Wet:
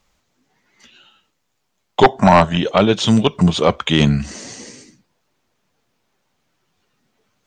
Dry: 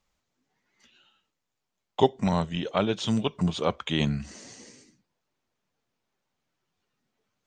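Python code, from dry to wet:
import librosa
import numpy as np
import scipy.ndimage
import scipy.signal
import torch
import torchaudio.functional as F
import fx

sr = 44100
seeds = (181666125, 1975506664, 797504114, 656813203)

y = fx.spec_box(x, sr, start_s=2.05, length_s=0.52, low_hz=560.0, high_hz=1800.0, gain_db=10)
y = fx.fold_sine(y, sr, drive_db=7, ceiling_db=-3.0)
y = F.gain(torch.from_numpy(y), 1.5).numpy()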